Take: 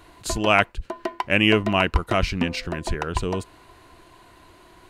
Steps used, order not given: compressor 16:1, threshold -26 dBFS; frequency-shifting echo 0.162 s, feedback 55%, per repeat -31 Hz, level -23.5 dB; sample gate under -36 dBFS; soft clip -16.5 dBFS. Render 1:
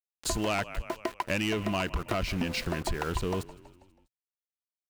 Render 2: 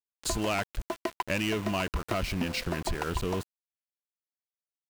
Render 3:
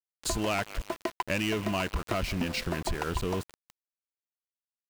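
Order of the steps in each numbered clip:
sample gate > frequency-shifting echo > soft clip > compressor; soft clip > compressor > frequency-shifting echo > sample gate; frequency-shifting echo > soft clip > compressor > sample gate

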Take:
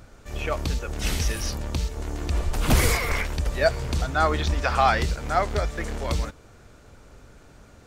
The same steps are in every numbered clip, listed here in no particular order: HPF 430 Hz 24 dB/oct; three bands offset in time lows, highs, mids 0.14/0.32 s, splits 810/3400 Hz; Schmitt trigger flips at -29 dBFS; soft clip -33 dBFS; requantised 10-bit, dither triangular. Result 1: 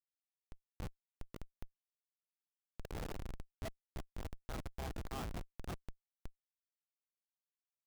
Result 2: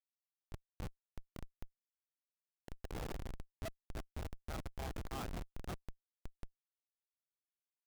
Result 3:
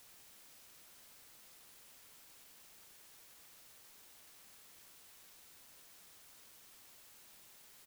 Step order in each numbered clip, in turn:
three bands offset in time > soft clip > HPF > requantised > Schmitt trigger; three bands offset in time > requantised > soft clip > HPF > Schmitt trigger; three bands offset in time > soft clip > Schmitt trigger > HPF > requantised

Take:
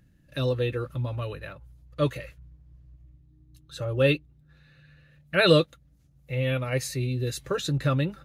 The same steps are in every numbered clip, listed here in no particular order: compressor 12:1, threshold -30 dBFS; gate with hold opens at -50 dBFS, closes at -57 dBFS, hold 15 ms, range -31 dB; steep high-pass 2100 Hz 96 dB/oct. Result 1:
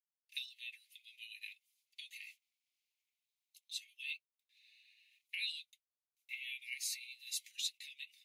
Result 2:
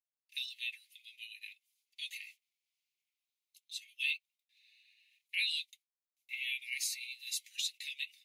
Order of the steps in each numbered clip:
compressor > gate with hold > steep high-pass; gate with hold > steep high-pass > compressor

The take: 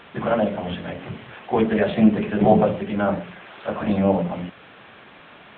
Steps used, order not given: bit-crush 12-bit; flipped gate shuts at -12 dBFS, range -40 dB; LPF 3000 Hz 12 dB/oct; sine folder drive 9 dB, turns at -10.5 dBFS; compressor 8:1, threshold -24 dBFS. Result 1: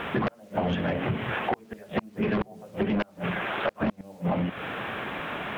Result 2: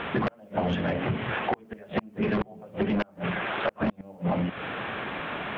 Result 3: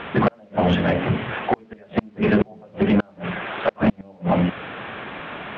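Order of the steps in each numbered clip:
LPF > flipped gate > bit-crush > sine folder > compressor; LPF > flipped gate > sine folder > bit-crush > compressor; flipped gate > compressor > bit-crush > LPF > sine folder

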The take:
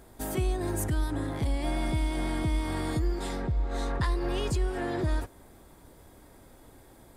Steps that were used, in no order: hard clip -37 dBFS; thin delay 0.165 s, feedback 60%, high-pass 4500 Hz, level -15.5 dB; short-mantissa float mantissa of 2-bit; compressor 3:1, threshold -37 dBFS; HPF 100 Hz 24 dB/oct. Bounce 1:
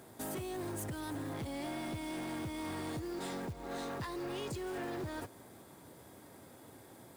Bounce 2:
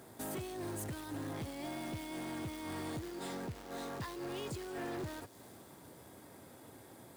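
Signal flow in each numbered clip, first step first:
HPF > compressor > hard clip > thin delay > short-mantissa float; short-mantissa float > thin delay > compressor > HPF > hard clip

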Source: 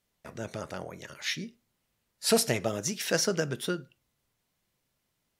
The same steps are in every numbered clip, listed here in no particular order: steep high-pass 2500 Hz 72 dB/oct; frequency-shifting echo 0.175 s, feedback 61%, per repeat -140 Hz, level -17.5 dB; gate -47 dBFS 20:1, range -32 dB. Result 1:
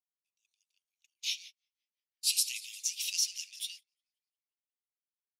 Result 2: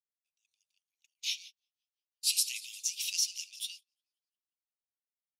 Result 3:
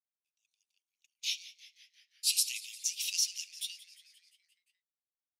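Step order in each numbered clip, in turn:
steep high-pass > frequency-shifting echo > gate; frequency-shifting echo > steep high-pass > gate; steep high-pass > gate > frequency-shifting echo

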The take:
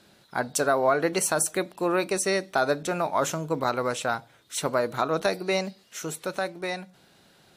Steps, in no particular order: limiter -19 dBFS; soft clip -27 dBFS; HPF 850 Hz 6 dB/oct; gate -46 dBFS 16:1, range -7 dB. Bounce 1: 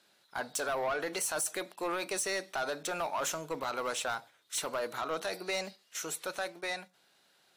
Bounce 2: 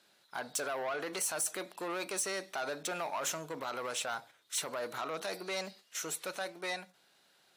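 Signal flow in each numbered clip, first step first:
HPF > limiter > gate > soft clip; limiter > gate > soft clip > HPF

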